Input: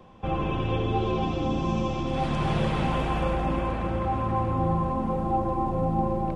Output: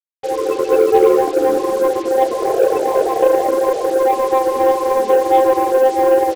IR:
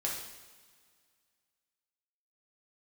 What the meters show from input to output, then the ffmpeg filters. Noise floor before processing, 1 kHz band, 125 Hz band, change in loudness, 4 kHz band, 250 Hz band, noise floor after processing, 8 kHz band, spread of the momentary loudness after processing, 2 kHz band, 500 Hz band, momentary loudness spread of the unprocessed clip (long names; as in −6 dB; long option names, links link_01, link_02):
−30 dBFS, +11.0 dB, below −15 dB, +12.0 dB, +4.5 dB, +5.0 dB, −23 dBFS, can't be measured, 4 LU, +8.0 dB, +18.5 dB, 2 LU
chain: -filter_complex "[0:a]asplit=2[link_01][link_02];[link_02]alimiter=limit=-22.5dB:level=0:latency=1:release=222,volume=2dB[link_03];[link_01][link_03]amix=inputs=2:normalize=0,highshelf=frequency=2100:gain=4.5,dynaudnorm=framelen=300:gausssize=3:maxgain=4.5dB,highpass=frequency=440:width_type=q:width=4.9,afftfilt=real='re*gte(hypot(re,im),0.398)':imag='im*gte(hypot(re,im),0.398)':win_size=1024:overlap=0.75,asplit=2[link_04][link_05];[link_05]adelay=13,volume=-10.5dB[link_06];[link_04][link_06]amix=inputs=2:normalize=0,aecho=1:1:360|720|1080|1440|1800:0.1|0.059|0.0348|0.0205|0.0121,aeval=exprs='0.891*(cos(1*acos(clip(val(0)/0.891,-1,1)))-cos(1*PI/2))+0.0398*(cos(7*acos(clip(val(0)/0.891,-1,1)))-cos(7*PI/2))':channel_layout=same,acrusher=bits=4:mix=0:aa=0.5"